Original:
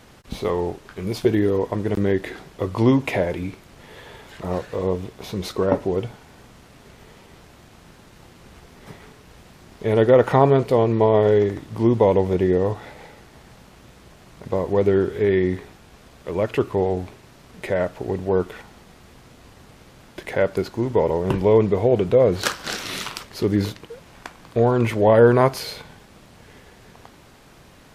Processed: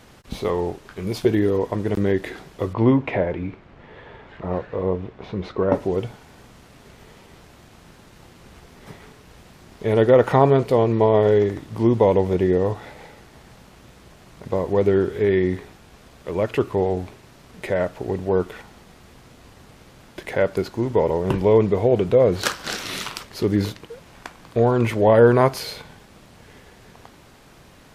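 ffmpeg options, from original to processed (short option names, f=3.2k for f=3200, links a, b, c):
-filter_complex "[0:a]asettb=1/sr,asplit=3[a][b][c];[a]atrim=end=2.734[d];[b]atrim=start=2.73:end=5.72,asetpts=PTS-STARTPTS,afade=t=in:d=0.004:c=qsin,afade=t=out:st=2.986:d=0.004:c=qsin,lowpass=2.3k[e];[c]atrim=start=5.716[f];[d][e]acrossfade=d=0.004:c1=hsin:c2=qsin[g];[g][f]acrossfade=d=0.004:c1=qsin:c2=hsin"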